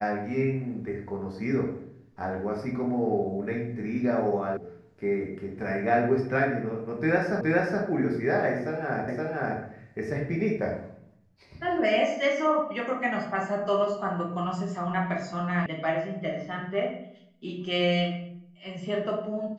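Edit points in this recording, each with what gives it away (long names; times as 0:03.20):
0:04.57: cut off before it has died away
0:07.41: the same again, the last 0.42 s
0:09.08: the same again, the last 0.52 s
0:15.66: cut off before it has died away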